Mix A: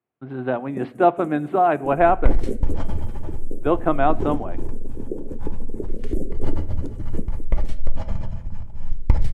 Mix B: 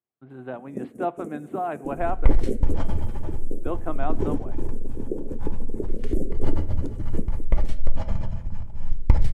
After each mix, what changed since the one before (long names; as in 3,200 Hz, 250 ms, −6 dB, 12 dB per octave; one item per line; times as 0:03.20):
speech −11.0 dB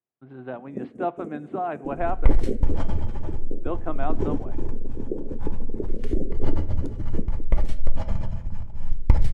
first sound: add high-frequency loss of the air 110 metres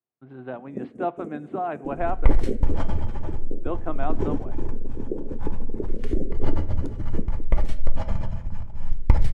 second sound: add parametric band 1,300 Hz +3 dB 2.4 octaves